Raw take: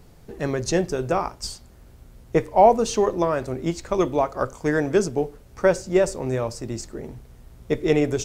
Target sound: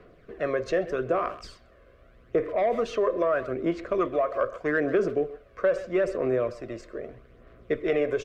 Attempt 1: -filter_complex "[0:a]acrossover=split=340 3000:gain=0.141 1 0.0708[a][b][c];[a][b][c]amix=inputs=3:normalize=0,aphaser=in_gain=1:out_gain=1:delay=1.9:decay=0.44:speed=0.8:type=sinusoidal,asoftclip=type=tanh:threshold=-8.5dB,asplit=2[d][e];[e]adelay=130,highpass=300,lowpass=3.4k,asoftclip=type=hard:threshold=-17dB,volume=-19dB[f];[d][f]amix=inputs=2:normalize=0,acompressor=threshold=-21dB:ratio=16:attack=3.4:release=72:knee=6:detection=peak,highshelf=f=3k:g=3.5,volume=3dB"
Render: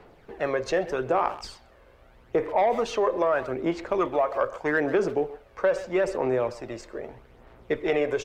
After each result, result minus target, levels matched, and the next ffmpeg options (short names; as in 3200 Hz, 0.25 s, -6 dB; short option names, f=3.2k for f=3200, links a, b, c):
8000 Hz band +5.5 dB; 1000 Hz band +3.5 dB
-filter_complex "[0:a]acrossover=split=340 3000:gain=0.141 1 0.0708[a][b][c];[a][b][c]amix=inputs=3:normalize=0,aphaser=in_gain=1:out_gain=1:delay=1.9:decay=0.44:speed=0.8:type=sinusoidal,asoftclip=type=tanh:threshold=-8.5dB,asplit=2[d][e];[e]adelay=130,highpass=300,lowpass=3.4k,asoftclip=type=hard:threshold=-17dB,volume=-19dB[f];[d][f]amix=inputs=2:normalize=0,acompressor=threshold=-21dB:ratio=16:attack=3.4:release=72:knee=6:detection=peak,highshelf=f=3k:g=-4.5,volume=3dB"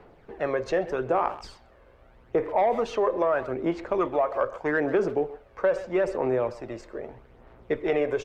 1000 Hz band +3.0 dB
-filter_complex "[0:a]acrossover=split=340 3000:gain=0.141 1 0.0708[a][b][c];[a][b][c]amix=inputs=3:normalize=0,aphaser=in_gain=1:out_gain=1:delay=1.9:decay=0.44:speed=0.8:type=sinusoidal,asoftclip=type=tanh:threshold=-8.5dB,asplit=2[d][e];[e]adelay=130,highpass=300,lowpass=3.4k,asoftclip=type=hard:threshold=-17dB,volume=-19dB[f];[d][f]amix=inputs=2:normalize=0,acompressor=threshold=-21dB:ratio=16:attack=3.4:release=72:knee=6:detection=peak,asuperstop=centerf=860:order=4:qfactor=2.8,highshelf=f=3k:g=-4.5,volume=3dB"